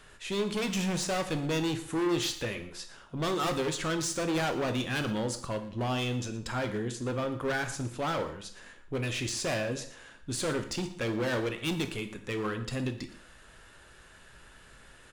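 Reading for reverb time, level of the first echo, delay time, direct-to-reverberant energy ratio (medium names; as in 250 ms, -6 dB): 0.55 s, -17.5 dB, 117 ms, 6.5 dB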